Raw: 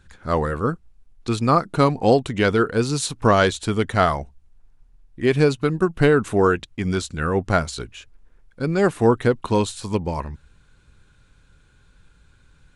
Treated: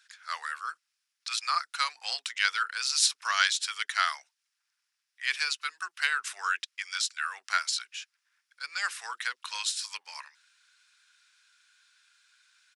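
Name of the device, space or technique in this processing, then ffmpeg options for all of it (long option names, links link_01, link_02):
headphones lying on a table: -filter_complex "[0:a]highpass=frequency=1500:width=0.5412,highpass=frequency=1500:width=1.3066,equalizer=frequency=5200:width_type=o:width=0.42:gain=8.5,acrossover=split=360[link_01][link_02];[link_01]adelay=30[link_03];[link_03][link_02]amix=inputs=2:normalize=0"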